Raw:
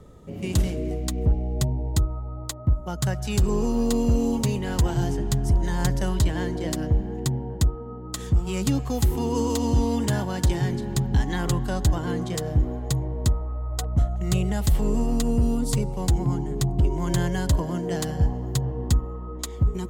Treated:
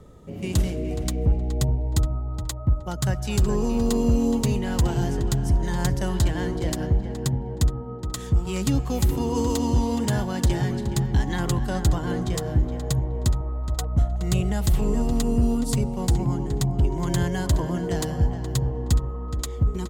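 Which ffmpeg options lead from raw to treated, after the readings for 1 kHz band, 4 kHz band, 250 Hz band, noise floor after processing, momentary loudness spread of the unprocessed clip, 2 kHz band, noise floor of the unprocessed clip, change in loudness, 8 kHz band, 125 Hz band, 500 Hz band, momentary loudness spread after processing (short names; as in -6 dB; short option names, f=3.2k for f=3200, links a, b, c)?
+0.5 dB, 0.0 dB, +0.5 dB, -33 dBFS, 5 LU, +0.5 dB, -35 dBFS, +0.5 dB, 0.0 dB, +0.5 dB, +0.5 dB, 4 LU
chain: -filter_complex "[0:a]asplit=2[a][b];[b]adelay=420,lowpass=f=3.3k:p=1,volume=-9.5dB,asplit=2[c][d];[d]adelay=420,lowpass=f=3.3k:p=1,volume=0.25,asplit=2[e][f];[f]adelay=420,lowpass=f=3.3k:p=1,volume=0.25[g];[a][c][e][g]amix=inputs=4:normalize=0"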